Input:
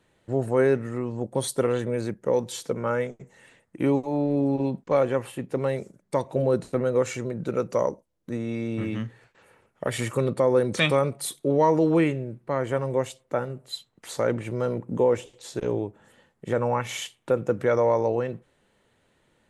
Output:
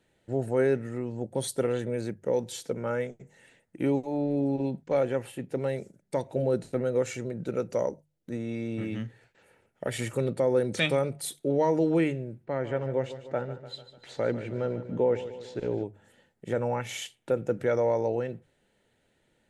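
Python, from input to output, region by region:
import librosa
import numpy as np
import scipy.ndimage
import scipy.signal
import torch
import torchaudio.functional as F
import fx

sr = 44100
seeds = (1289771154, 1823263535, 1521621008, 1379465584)

y = fx.chain(x, sr, fx.lowpass(hz=3900.0, slope=12),
    fx.echo_feedback(ms=148, feedback_pct=56, wet_db=-13.0), at=(12.45, 15.84))
y = fx.peak_eq(y, sr, hz=1100.0, db=-12.5, octaves=0.27)
y = fx.hum_notches(y, sr, base_hz=50, count=3)
y = y * librosa.db_to_amplitude(-3.5)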